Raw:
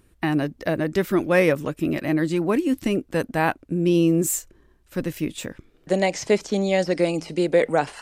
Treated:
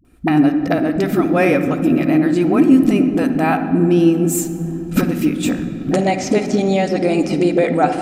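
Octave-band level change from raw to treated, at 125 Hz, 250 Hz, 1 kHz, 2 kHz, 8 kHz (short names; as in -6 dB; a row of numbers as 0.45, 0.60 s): +6.5, +9.5, +7.5, +3.0, +3.0 dB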